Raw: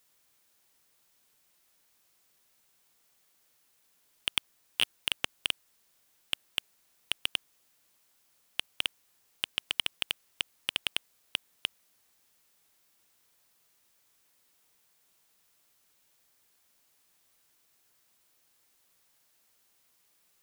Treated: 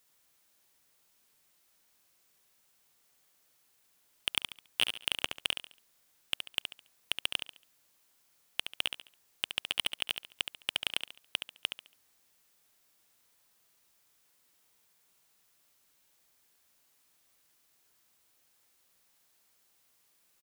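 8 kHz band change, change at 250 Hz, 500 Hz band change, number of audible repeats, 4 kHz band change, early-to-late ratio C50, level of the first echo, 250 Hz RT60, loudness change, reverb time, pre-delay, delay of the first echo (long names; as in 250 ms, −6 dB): −0.5 dB, −0.5 dB, +1.5 dB, 3, −0.5 dB, no reverb audible, −7.5 dB, no reverb audible, −1.0 dB, no reverb audible, no reverb audible, 70 ms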